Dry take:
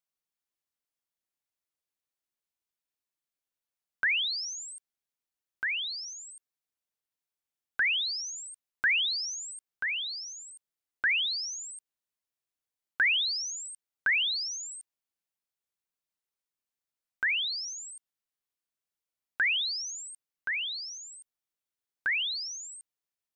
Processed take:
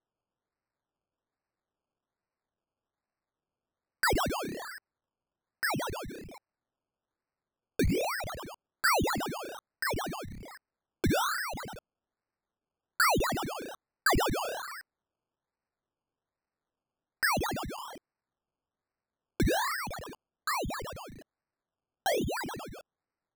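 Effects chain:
sample-and-hold swept by an LFO 18×, swing 60% 1.2 Hz

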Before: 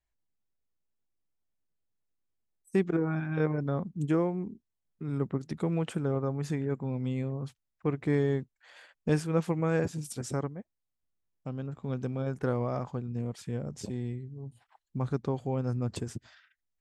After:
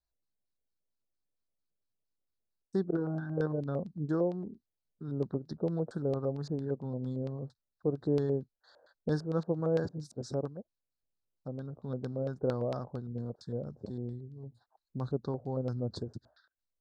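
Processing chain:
elliptic band-stop filter 1,600–3,900 Hz, stop band 60 dB
auto-filter low-pass square 4.4 Hz 570–4,400 Hz
level −4.5 dB

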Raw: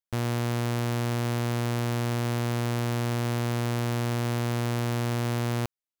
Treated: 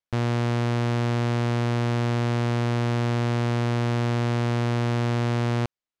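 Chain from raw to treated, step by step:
high-frequency loss of the air 98 metres
level +4 dB

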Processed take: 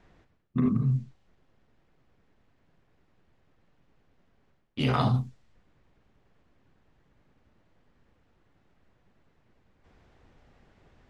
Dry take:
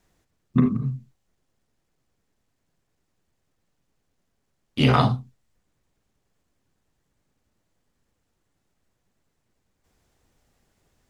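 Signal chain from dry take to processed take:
low-pass that shuts in the quiet parts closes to 2,800 Hz, open at −20.5 dBFS
reversed playback
downward compressor 8 to 1, threshold −31 dBFS, peak gain reduction 18 dB
reversed playback
level +8.5 dB

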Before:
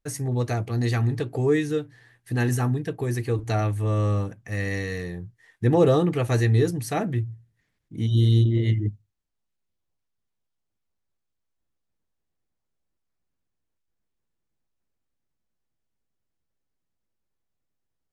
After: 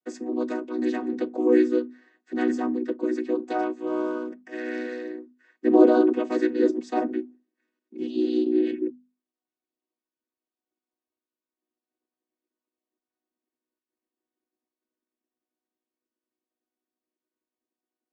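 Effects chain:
channel vocoder with a chord as carrier major triad, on B3
mains-hum notches 50/100/150/200/250 Hz

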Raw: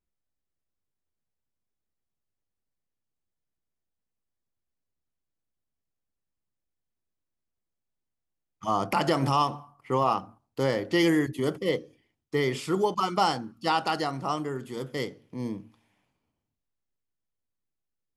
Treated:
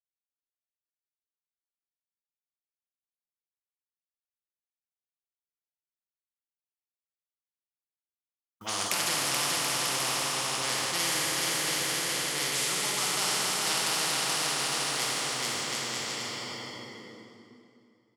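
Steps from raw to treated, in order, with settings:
noise gate −50 dBFS, range −25 dB
meter weighting curve ITU-R 468
low-pass that shuts in the quiet parts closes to 310 Hz, open at −24.5 dBFS
dynamic equaliser 130 Hz, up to +5 dB, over −56 dBFS, Q 1.8
tempo change 1×
bit reduction 12 bits
bouncing-ball delay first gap 430 ms, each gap 0.7×, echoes 5
dense smooth reverb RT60 2.6 s, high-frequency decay 0.8×, DRR −3.5 dB
every bin compressed towards the loudest bin 4 to 1
level −8 dB

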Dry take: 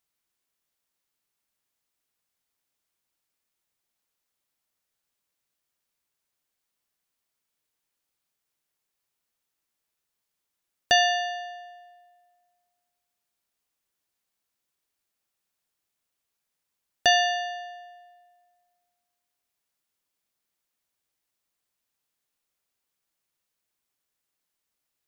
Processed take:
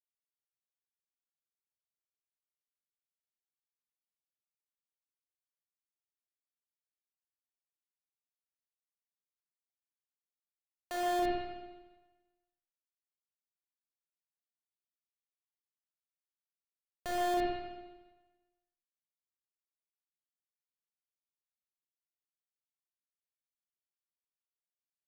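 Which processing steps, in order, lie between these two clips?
high-pass filter 350 Hz 12 dB per octave
high-shelf EQ 4,300 Hz −5.5 dB
in parallel at 0 dB: brickwall limiter −18.5 dBFS, peak gain reduction 9.5 dB
on the sum: comparator with hysteresis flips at −18 dBFS
spring reverb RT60 1.2 s, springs 31/47/51 ms, chirp 50 ms, DRR −4 dB
level −4.5 dB

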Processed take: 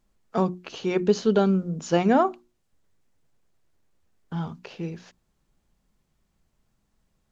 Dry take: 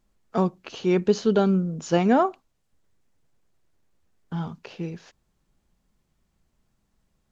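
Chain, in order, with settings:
mains-hum notches 60/120/180/240/300/360 Hz

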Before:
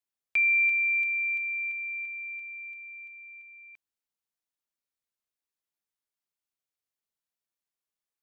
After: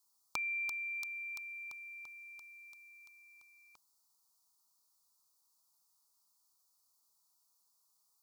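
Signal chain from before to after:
drawn EQ curve 650 Hz 0 dB, 940 Hz +12 dB, 1,300 Hz +8 dB, 1,900 Hz −26 dB, 2,900 Hz −11 dB, 4,500 Hz +13 dB
level +4 dB

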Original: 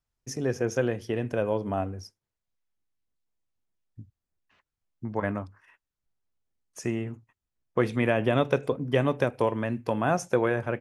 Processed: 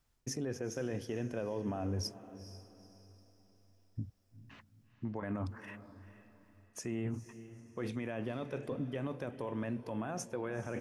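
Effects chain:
parametric band 260 Hz +3 dB 0.77 octaves
reversed playback
downward compressor 8 to 1, threshold −38 dBFS, peak gain reduction 20.5 dB
reversed playback
brickwall limiter −37.5 dBFS, peak gain reduction 10.5 dB
feedback delay with all-pass diffusion 458 ms, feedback 40%, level −14 dB
level +8.5 dB

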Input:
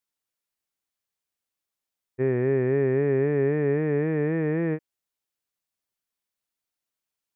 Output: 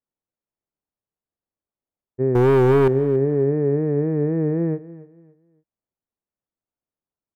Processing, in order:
Bessel low-pass filter 630 Hz, order 2
0:02.35–0:02.88: leveller curve on the samples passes 3
on a send: repeating echo 283 ms, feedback 29%, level −18 dB
on the sum: level +4.5 dB

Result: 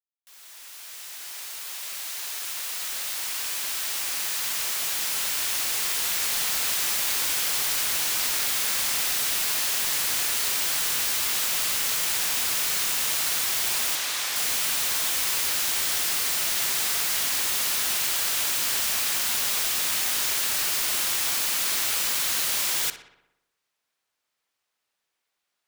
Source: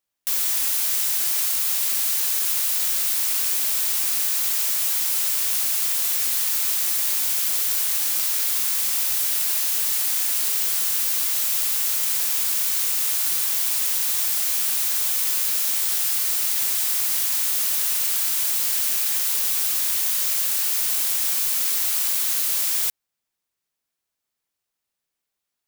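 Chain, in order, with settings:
fade in at the beginning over 6.80 s
0:13.95–0:14.36: high-shelf EQ 8,800 Hz −10 dB
mid-hump overdrive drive 12 dB, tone 3,600 Hz, clips at −7.5 dBFS
feedback echo with a low-pass in the loop 61 ms, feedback 63%, low-pass 4,000 Hz, level −10.5 dB

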